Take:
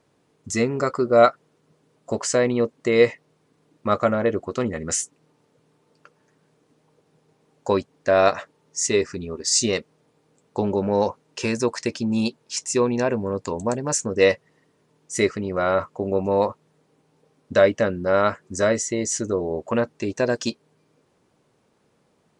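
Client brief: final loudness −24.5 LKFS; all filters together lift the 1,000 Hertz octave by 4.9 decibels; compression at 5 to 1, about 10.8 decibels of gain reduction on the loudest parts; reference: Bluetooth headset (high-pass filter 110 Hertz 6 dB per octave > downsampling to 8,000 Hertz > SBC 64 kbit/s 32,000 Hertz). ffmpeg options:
ffmpeg -i in.wav -af "equalizer=frequency=1000:width_type=o:gain=7,acompressor=threshold=-20dB:ratio=5,highpass=frequency=110:poles=1,aresample=8000,aresample=44100,volume=2.5dB" -ar 32000 -c:a sbc -b:a 64k out.sbc

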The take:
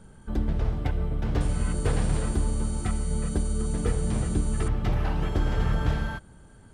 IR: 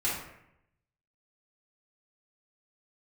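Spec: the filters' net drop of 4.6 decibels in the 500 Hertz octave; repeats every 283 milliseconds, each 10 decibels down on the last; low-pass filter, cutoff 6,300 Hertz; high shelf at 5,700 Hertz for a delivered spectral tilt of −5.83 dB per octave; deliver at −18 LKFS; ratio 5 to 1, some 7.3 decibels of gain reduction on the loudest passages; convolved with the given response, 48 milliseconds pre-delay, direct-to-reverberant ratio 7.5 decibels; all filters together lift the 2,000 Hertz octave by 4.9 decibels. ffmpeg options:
-filter_complex "[0:a]lowpass=6300,equalizer=frequency=500:width_type=o:gain=-6,equalizer=frequency=2000:width_type=o:gain=6,highshelf=frequency=5700:gain=8.5,acompressor=threshold=-28dB:ratio=5,aecho=1:1:283|566|849|1132:0.316|0.101|0.0324|0.0104,asplit=2[link_01][link_02];[1:a]atrim=start_sample=2205,adelay=48[link_03];[link_02][link_03]afir=irnorm=-1:irlink=0,volume=-16dB[link_04];[link_01][link_04]amix=inputs=2:normalize=0,volume=15dB"

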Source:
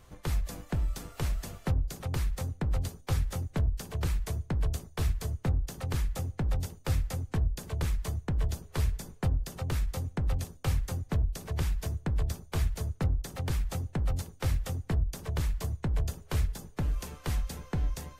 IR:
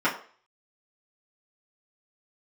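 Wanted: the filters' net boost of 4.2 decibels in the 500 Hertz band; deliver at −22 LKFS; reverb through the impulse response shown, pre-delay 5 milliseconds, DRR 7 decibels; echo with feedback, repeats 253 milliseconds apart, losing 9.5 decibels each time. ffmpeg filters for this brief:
-filter_complex "[0:a]equalizer=frequency=500:width_type=o:gain=5,aecho=1:1:253|506|759|1012:0.335|0.111|0.0365|0.012,asplit=2[link_01][link_02];[1:a]atrim=start_sample=2205,adelay=5[link_03];[link_02][link_03]afir=irnorm=-1:irlink=0,volume=-22dB[link_04];[link_01][link_04]amix=inputs=2:normalize=0,volume=10.5dB"

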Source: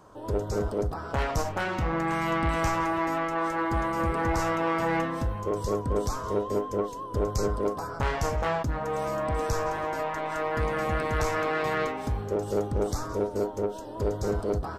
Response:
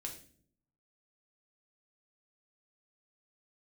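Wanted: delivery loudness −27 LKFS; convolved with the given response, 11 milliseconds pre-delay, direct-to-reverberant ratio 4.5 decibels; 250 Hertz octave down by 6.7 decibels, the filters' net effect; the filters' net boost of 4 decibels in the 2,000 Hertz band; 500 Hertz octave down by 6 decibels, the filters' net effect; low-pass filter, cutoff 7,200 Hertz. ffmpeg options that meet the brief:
-filter_complex "[0:a]lowpass=7200,equalizer=frequency=250:width_type=o:gain=-8,equalizer=frequency=500:width_type=o:gain=-5.5,equalizer=frequency=2000:width_type=o:gain=5.5,asplit=2[link_01][link_02];[1:a]atrim=start_sample=2205,adelay=11[link_03];[link_02][link_03]afir=irnorm=-1:irlink=0,volume=-2dB[link_04];[link_01][link_04]amix=inputs=2:normalize=0,volume=2dB"

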